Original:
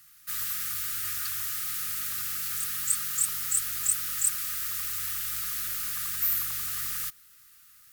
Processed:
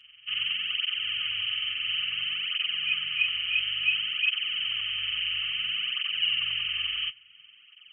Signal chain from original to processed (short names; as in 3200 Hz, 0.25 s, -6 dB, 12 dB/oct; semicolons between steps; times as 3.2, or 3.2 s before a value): nonlinear frequency compression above 1700 Hz 4:1; tape flanging out of phase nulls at 0.58 Hz, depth 6.8 ms; gain -2.5 dB